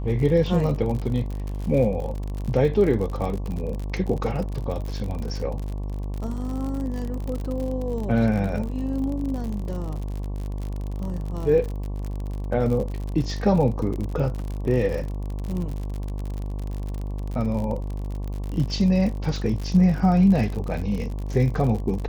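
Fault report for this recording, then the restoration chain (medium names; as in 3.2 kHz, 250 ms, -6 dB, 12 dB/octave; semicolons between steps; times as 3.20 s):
buzz 50 Hz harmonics 23 -29 dBFS
crackle 54 per s -29 dBFS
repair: de-click; de-hum 50 Hz, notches 23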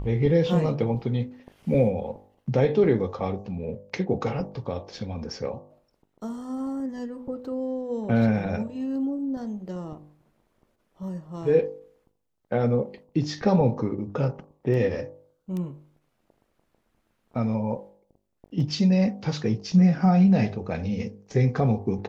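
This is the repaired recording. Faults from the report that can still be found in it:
nothing left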